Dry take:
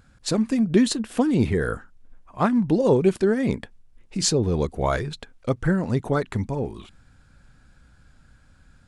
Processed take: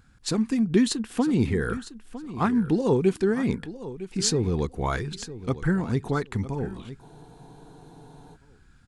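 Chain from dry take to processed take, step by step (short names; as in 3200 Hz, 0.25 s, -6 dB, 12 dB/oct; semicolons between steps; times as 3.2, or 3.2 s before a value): bell 590 Hz -11.5 dB 0.32 oct; on a send: feedback echo 0.956 s, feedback 18%, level -14.5 dB; on the sum: spectral freeze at 7.04, 1.31 s; gain -2 dB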